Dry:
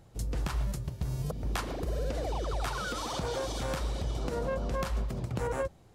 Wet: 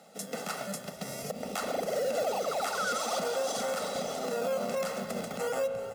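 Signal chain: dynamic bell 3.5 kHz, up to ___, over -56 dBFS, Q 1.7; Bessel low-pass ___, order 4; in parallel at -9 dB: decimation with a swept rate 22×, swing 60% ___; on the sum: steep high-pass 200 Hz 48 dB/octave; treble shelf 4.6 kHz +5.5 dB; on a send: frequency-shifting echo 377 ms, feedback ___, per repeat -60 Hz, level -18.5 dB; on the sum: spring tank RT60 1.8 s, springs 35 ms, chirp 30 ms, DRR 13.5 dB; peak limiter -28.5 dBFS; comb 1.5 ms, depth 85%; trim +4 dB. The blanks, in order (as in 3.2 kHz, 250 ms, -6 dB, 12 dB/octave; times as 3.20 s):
-4 dB, 12 kHz, 0.45 Hz, 41%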